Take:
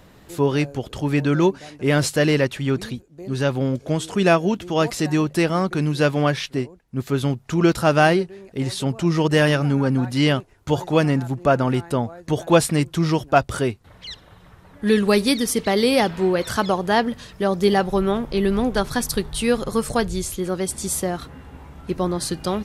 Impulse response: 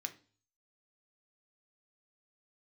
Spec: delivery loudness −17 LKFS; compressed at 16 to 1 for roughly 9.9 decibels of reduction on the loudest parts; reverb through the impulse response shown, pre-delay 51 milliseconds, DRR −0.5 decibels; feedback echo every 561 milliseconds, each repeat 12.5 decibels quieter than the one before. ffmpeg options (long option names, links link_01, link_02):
-filter_complex "[0:a]acompressor=threshold=-20dB:ratio=16,aecho=1:1:561|1122|1683:0.237|0.0569|0.0137,asplit=2[link_01][link_02];[1:a]atrim=start_sample=2205,adelay=51[link_03];[link_02][link_03]afir=irnorm=-1:irlink=0,volume=2dB[link_04];[link_01][link_04]amix=inputs=2:normalize=0,volume=7dB"